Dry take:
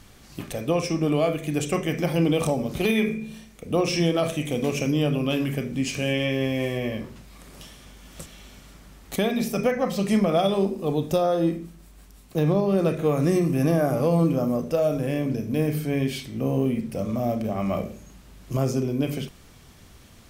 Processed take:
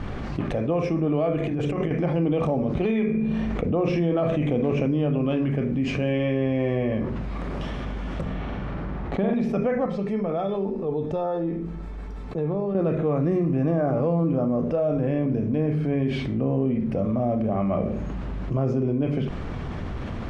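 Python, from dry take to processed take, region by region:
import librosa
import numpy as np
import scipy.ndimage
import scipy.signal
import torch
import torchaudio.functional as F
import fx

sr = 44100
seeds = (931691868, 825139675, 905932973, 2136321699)

y = fx.chain(x, sr, fx.over_compress(threshold_db=-29.0, ratio=-0.5),
    fx.hum_notches(base_hz=50, count=8), at=(1.4, 1.91))
y = fx.chain(y, sr, fx.high_shelf(hz=4200.0, db=-5.5),
    fx.env_flatten(amount_pct=50), at=(3.14, 4.91))
y = fx.chain(y, sr, fx.peak_eq(hz=11000.0, db=-15.0, octaves=2.2),
    fx.room_flutter(wall_m=7.9, rt60_s=0.69), at=(8.21, 9.34))
y = fx.chain(y, sr, fx.notch(hz=2900.0, q=12.0),
    fx.comb_fb(f0_hz=440.0, decay_s=0.15, harmonics='all', damping=0.0, mix_pct=80), at=(9.86, 12.75))
y = scipy.signal.sosfilt(scipy.signal.bessel(2, 1300.0, 'lowpass', norm='mag', fs=sr, output='sos'), y)
y = fx.env_flatten(y, sr, amount_pct=70)
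y = y * librosa.db_to_amplitude(-3.0)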